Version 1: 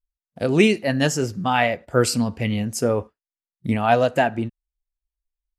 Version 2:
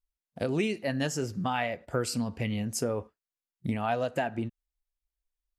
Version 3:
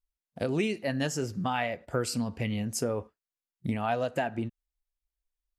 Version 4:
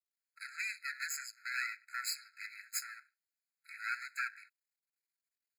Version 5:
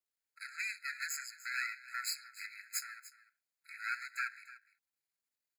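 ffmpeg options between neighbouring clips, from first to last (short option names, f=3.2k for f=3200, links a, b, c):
-af "acompressor=threshold=-26dB:ratio=3,volume=-2.5dB"
-af anull
-af "aeval=exprs='max(val(0),0)':c=same,afftfilt=real='re*eq(mod(floor(b*sr/1024/1300),2),1)':imag='im*eq(mod(floor(b*sr/1024/1300),2),1)':win_size=1024:overlap=0.75,volume=4.5dB"
-af "aecho=1:1:296:0.141"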